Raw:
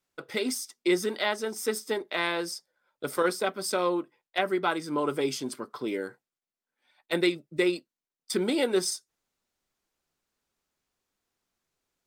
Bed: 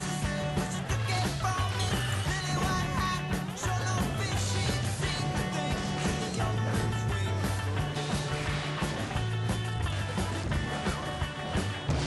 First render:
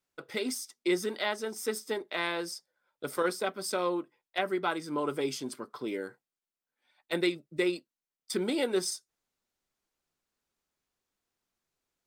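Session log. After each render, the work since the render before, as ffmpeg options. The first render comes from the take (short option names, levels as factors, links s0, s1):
-af "volume=0.668"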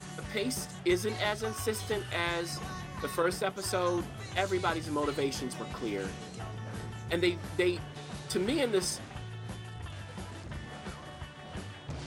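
-filter_complex "[1:a]volume=0.282[s0];[0:a][s0]amix=inputs=2:normalize=0"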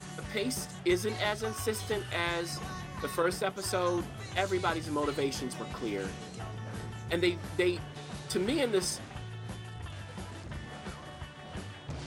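-af anull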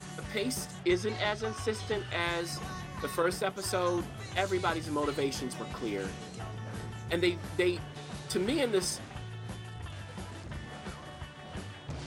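-filter_complex "[0:a]asplit=3[s0][s1][s2];[s0]afade=t=out:st=0.83:d=0.02[s3];[s1]lowpass=6400,afade=t=in:st=0.83:d=0.02,afade=t=out:st=2.19:d=0.02[s4];[s2]afade=t=in:st=2.19:d=0.02[s5];[s3][s4][s5]amix=inputs=3:normalize=0"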